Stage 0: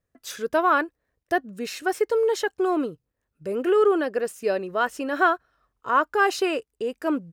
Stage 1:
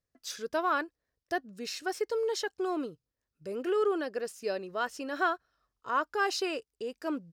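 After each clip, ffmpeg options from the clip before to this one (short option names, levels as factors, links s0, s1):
-af "equalizer=f=5000:t=o:w=0.92:g=9.5,volume=0.355"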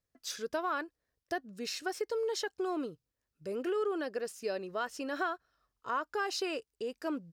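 -af "acompressor=threshold=0.0282:ratio=3"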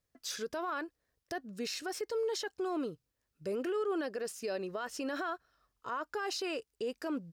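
-af "alimiter=level_in=2.37:limit=0.0631:level=0:latency=1:release=33,volume=0.422,volume=1.41"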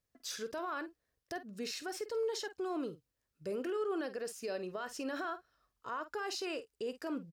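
-filter_complex "[0:a]asplit=2[s0][s1];[s1]adelay=49,volume=0.224[s2];[s0][s2]amix=inputs=2:normalize=0,volume=0.75"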